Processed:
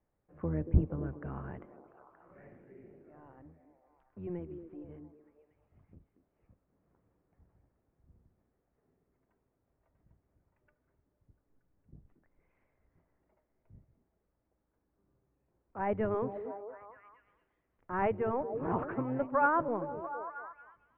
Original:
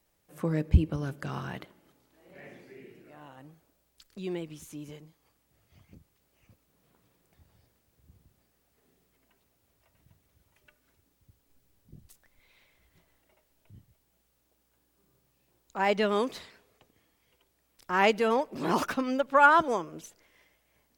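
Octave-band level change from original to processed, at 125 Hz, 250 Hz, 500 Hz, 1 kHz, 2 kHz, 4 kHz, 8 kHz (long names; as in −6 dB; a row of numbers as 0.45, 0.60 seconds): −4.0 dB, −4.5 dB, −5.0 dB, −7.5 dB, −10.5 dB, below −25 dB, below −25 dB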